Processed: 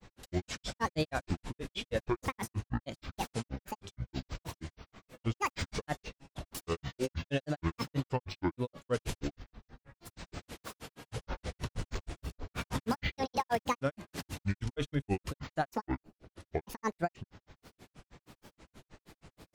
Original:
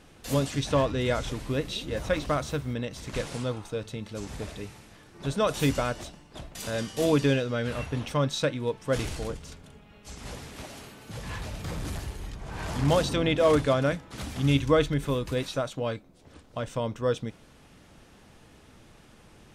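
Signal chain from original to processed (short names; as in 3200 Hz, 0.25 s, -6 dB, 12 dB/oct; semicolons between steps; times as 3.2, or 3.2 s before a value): limiter -21.5 dBFS, peak gain reduction 11 dB; grains 0.104 s, grains 6.3/s, spray 14 ms, pitch spread up and down by 12 st; gain +1.5 dB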